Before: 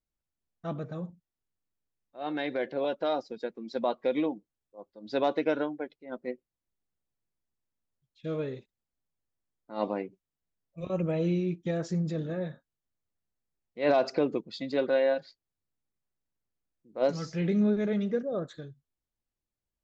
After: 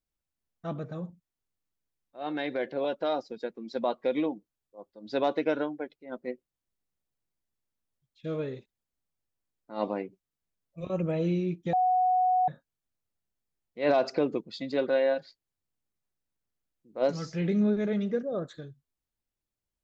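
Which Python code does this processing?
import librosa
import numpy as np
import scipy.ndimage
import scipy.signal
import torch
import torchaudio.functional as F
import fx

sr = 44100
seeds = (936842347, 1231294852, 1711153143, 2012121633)

y = fx.edit(x, sr, fx.bleep(start_s=11.73, length_s=0.75, hz=737.0, db=-21.0), tone=tone)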